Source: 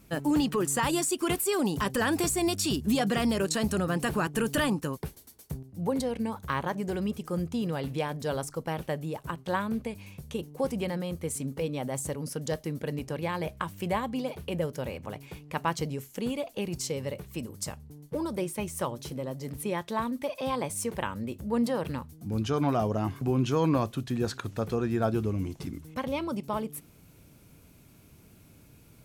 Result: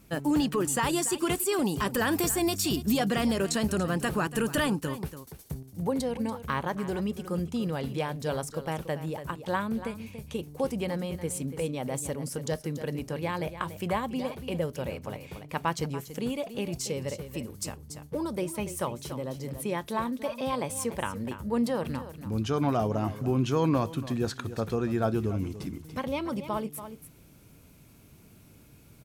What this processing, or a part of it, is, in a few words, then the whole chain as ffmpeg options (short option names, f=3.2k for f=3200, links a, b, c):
ducked delay: -filter_complex "[0:a]asettb=1/sr,asplit=3[a][b][c];[a]atrim=end=1.894[d];[b]atrim=start=1.89:end=2.98,asetpts=PTS-STARTPTS,afade=t=in:d=0.004:c=qsin,afade=t=out:st=1.086:d=0.004:c=qsin,equalizer=f=14k:w=4.7:g=15[e];[c]atrim=start=2.976[f];[d][e]acrossfade=d=0.004:c1=hsin:c2=qsin[g];[g][f]acrossfade=d=0.004:c1=qsin:c2=hsin,asplit=3[h][i][j];[i]adelay=286,volume=-8dB[k];[j]apad=whole_len=1293439[l];[k][l]sidechaincompress=threshold=-31dB:ratio=8:attack=38:release=1160[m];[h][m]amix=inputs=2:normalize=0"